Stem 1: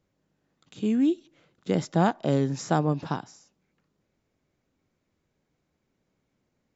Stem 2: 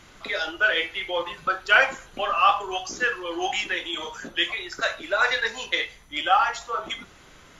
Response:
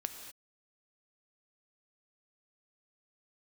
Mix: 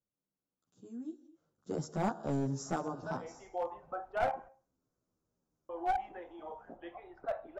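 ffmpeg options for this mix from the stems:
-filter_complex "[0:a]firequalizer=gain_entry='entry(1400,0);entry(2100,-19);entry(5600,2)':delay=0.05:min_phase=1,asplit=2[link_01][link_02];[link_02]adelay=11.5,afreqshift=-0.46[link_03];[link_01][link_03]amix=inputs=2:normalize=1,volume=-9dB,afade=type=in:start_time=1.31:duration=0.54:silence=0.251189,asplit=3[link_04][link_05][link_06];[link_05]volume=-4.5dB[link_07];[1:a]lowpass=frequency=750:width_type=q:width=4.9,adelay=2450,volume=-15dB,asplit=3[link_08][link_09][link_10];[link_08]atrim=end=4.49,asetpts=PTS-STARTPTS,afade=type=out:start_time=4.486:duration=0.004:curve=hsin[link_11];[link_09]atrim=start=4.49:end=5.69,asetpts=PTS-STARTPTS,volume=0[link_12];[link_10]atrim=start=5.69,asetpts=PTS-STARTPTS,afade=type=in:duration=0.004:curve=hsin[link_13];[link_11][link_12][link_13]concat=n=3:v=0:a=1,asplit=2[link_14][link_15];[link_15]volume=-19.5dB[link_16];[link_06]apad=whole_len=442875[link_17];[link_14][link_17]sidechaincompress=threshold=-52dB:ratio=8:attack=16:release=113[link_18];[2:a]atrim=start_sample=2205[link_19];[link_07][link_16]amix=inputs=2:normalize=0[link_20];[link_20][link_19]afir=irnorm=-1:irlink=0[link_21];[link_04][link_18][link_21]amix=inputs=3:normalize=0,aeval=exprs='clip(val(0),-1,0.0355)':channel_layout=same"

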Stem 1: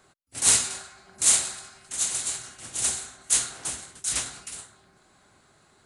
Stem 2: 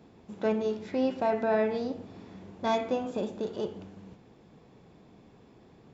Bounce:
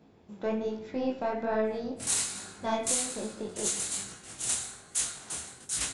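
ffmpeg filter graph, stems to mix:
ffmpeg -i stem1.wav -i stem2.wav -filter_complex "[0:a]adelay=1650,volume=-1dB,asplit=2[link_01][link_02];[link_02]volume=-16.5dB[link_03];[1:a]aeval=exprs='0.2*(cos(1*acos(clip(val(0)/0.2,-1,1)))-cos(1*PI/2))+0.0282*(cos(2*acos(clip(val(0)/0.2,-1,1)))-cos(2*PI/2))':channel_layout=same,volume=-0.5dB,asplit=2[link_04][link_05];[link_05]volume=-15.5dB[link_06];[link_03][link_06]amix=inputs=2:normalize=0,aecho=0:1:80|160|240|320|400|480|560:1|0.47|0.221|0.104|0.0488|0.0229|0.0108[link_07];[link_01][link_04][link_07]amix=inputs=3:normalize=0,flanger=delay=18:depth=7.1:speed=1.2,alimiter=limit=-16.5dB:level=0:latency=1:release=455" out.wav

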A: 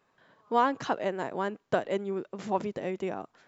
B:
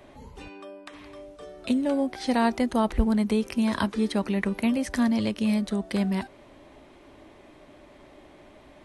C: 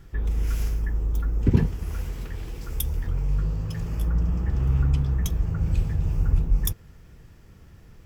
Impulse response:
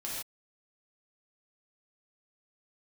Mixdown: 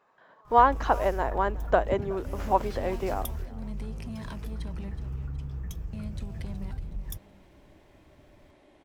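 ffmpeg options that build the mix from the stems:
-filter_complex "[0:a]equalizer=frequency=880:width=0.48:gain=12.5,volume=-5.5dB,asplit=3[link_01][link_02][link_03];[link_02]volume=-22.5dB[link_04];[1:a]bandreject=frequency=1200:width=12,acompressor=threshold=-26dB:ratio=6,asoftclip=type=tanh:threshold=-26dB,adelay=500,volume=-8dB,asplit=3[link_05][link_06][link_07];[link_05]atrim=end=4.92,asetpts=PTS-STARTPTS,afade=type=out:start_time=4.916:duration=0.004:curve=hsin[link_08];[link_06]atrim=start=4.92:end=5.93,asetpts=PTS-STARTPTS,volume=0[link_09];[link_07]atrim=start=5.93,asetpts=PTS-STARTPTS,afade=type=in:duration=0.004:curve=hsin[link_10];[link_08][link_09][link_10]concat=n=3:v=0:a=1,asplit=2[link_11][link_12];[link_12]volume=-14.5dB[link_13];[2:a]adelay=450,volume=1.5dB[link_14];[link_03]apad=whole_len=375059[link_15];[link_14][link_15]sidechaingate=range=-12dB:threshold=-55dB:ratio=16:detection=peak[link_16];[link_11][link_16]amix=inputs=2:normalize=0,acompressor=threshold=-30dB:ratio=12,volume=0dB[link_17];[link_04][link_13]amix=inputs=2:normalize=0,aecho=0:1:370|740|1110|1480|1850|2220:1|0.4|0.16|0.064|0.0256|0.0102[link_18];[link_01][link_17][link_18]amix=inputs=3:normalize=0"

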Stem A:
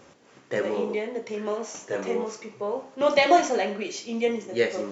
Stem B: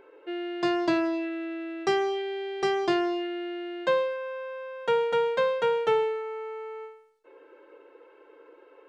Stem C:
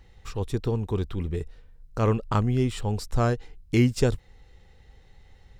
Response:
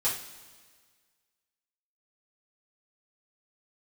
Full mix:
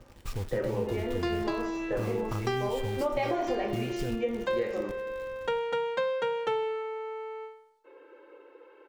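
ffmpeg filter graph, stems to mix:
-filter_complex "[0:a]lowpass=frequency=1200:poles=1,volume=-2dB,asplit=3[link_01][link_02][link_03];[link_02]volume=-11dB[link_04];[1:a]bandreject=frequency=650:width=12,adelay=600,volume=-1dB,asplit=2[link_05][link_06];[link_06]volume=-20dB[link_07];[2:a]lowshelf=frequency=190:gain=7,acompressor=threshold=-28dB:ratio=5,acrusher=bits=6:mix=0:aa=0.000001,volume=-3dB,asplit=2[link_08][link_09];[link_09]volume=-20dB[link_10];[link_03]apad=whole_len=418361[link_11];[link_05][link_11]sidechaincompress=threshold=-28dB:ratio=8:attack=16:release=625[link_12];[link_01][link_08]amix=inputs=2:normalize=0,agate=range=-10dB:threshold=-37dB:ratio=16:detection=peak,acompressor=threshold=-24dB:ratio=6,volume=0dB[link_13];[3:a]atrim=start_sample=2205[link_14];[link_04][link_07][link_10]amix=inputs=3:normalize=0[link_15];[link_15][link_14]afir=irnorm=-1:irlink=0[link_16];[link_12][link_13][link_16]amix=inputs=3:normalize=0,acompressor=threshold=-28dB:ratio=2.5"

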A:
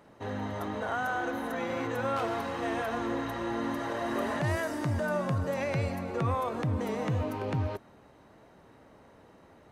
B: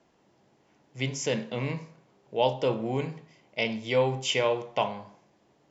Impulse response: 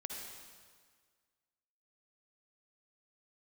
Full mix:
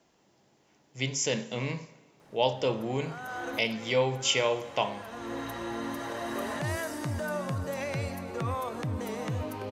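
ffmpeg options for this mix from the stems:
-filter_complex "[0:a]adelay=2200,volume=-3dB[link_01];[1:a]volume=-3dB,asplit=3[link_02][link_03][link_04];[link_03]volume=-15dB[link_05];[link_04]apad=whole_len=525270[link_06];[link_01][link_06]sidechaincompress=threshold=-40dB:ratio=8:attack=38:release=516[link_07];[2:a]atrim=start_sample=2205[link_08];[link_05][link_08]afir=irnorm=-1:irlink=0[link_09];[link_07][link_02][link_09]amix=inputs=3:normalize=0,highshelf=frequency=3800:gain=9.5"

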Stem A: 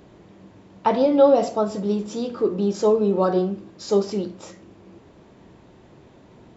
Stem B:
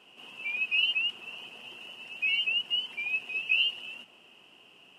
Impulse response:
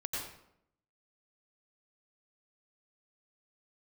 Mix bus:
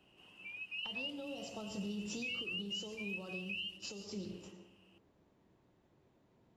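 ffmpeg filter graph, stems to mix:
-filter_complex "[0:a]agate=range=-18dB:threshold=-37dB:ratio=16:detection=peak,acompressor=threshold=-26dB:ratio=6,volume=-6dB,asplit=3[link_01][link_02][link_03];[link_02]volume=-7.5dB[link_04];[1:a]volume=-3.5dB[link_05];[link_03]apad=whole_len=219627[link_06];[link_05][link_06]sidechaingate=range=-10dB:threshold=-60dB:ratio=16:detection=peak[link_07];[2:a]atrim=start_sample=2205[link_08];[link_04][link_08]afir=irnorm=-1:irlink=0[link_09];[link_01][link_07][link_09]amix=inputs=3:normalize=0,acrossover=split=170|3000[link_10][link_11][link_12];[link_11]acompressor=threshold=-48dB:ratio=4[link_13];[link_10][link_13][link_12]amix=inputs=3:normalize=0,alimiter=level_in=8.5dB:limit=-24dB:level=0:latency=1:release=283,volume=-8.5dB"

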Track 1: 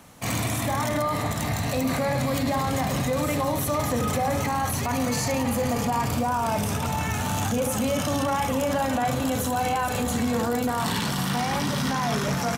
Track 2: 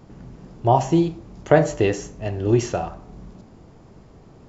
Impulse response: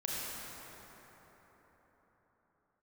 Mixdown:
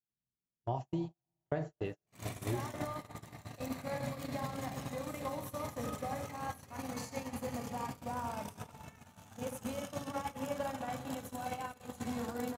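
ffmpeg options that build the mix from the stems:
-filter_complex "[0:a]aeval=exprs='sgn(val(0))*max(abs(val(0))-0.002,0)':channel_layout=same,adelay=1850,volume=-3.5dB,asplit=2[link_01][link_02];[link_02]volume=-8.5dB[link_03];[1:a]acrossover=split=3800[link_04][link_05];[link_05]acompressor=threshold=-55dB:ratio=4:attack=1:release=60[link_06];[link_04][link_06]amix=inputs=2:normalize=0,bass=frequency=250:gain=6,treble=frequency=4000:gain=11,volume=-10dB,asplit=2[link_07][link_08];[link_08]volume=-12dB[link_09];[2:a]atrim=start_sample=2205[link_10];[link_03][link_09]amix=inputs=2:normalize=0[link_11];[link_11][link_10]afir=irnorm=-1:irlink=0[link_12];[link_01][link_07][link_12]amix=inputs=3:normalize=0,highpass=frequency=70:poles=1,agate=range=-53dB:threshold=-23dB:ratio=16:detection=peak,acompressor=threshold=-37dB:ratio=3"

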